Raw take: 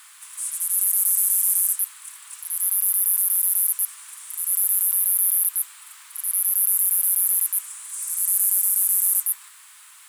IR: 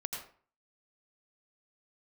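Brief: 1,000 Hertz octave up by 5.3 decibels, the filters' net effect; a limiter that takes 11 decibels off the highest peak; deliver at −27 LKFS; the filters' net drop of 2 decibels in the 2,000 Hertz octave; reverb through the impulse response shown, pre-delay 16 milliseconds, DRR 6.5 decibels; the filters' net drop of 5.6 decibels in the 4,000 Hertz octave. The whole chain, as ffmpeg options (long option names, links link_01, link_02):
-filter_complex "[0:a]equalizer=frequency=1000:width_type=o:gain=8,equalizer=frequency=2000:width_type=o:gain=-3.5,equalizer=frequency=4000:width_type=o:gain=-7,alimiter=limit=-14.5dB:level=0:latency=1,asplit=2[link_01][link_02];[1:a]atrim=start_sample=2205,adelay=16[link_03];[link_02][link_03]afir=irnorm=-1:irlink=0,volume=-7.5dB[link_04];[link_01][link_04]amix=inputs=2:normalize=0,volume=-1dB"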